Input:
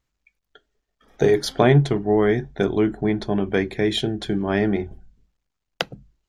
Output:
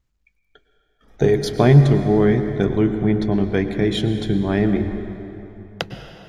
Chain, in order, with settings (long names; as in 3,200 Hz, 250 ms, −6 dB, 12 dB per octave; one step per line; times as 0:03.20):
low-shelf EQ 210 Hz +10.5 dB
dense smooth reverb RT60 3.3 s, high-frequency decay 0.65×, pre-delay 90 ms, DRR 8 dB
level −2 dB